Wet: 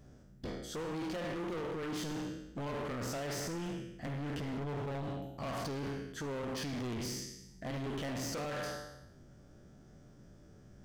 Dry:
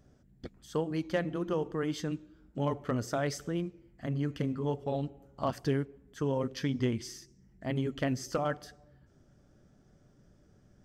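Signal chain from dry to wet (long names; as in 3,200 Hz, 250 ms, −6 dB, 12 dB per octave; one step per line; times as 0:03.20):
peak hold with a decay on every bin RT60 0.88 s
0:04.57–0:05.03: low-shelf EQ 180 Hz +9.5 dB
brickwall limiter −25.5 dBFS, peak gain reduction 9 dB
hard clipping −39 dBFS, distortion −6 dB
level +2.5 dB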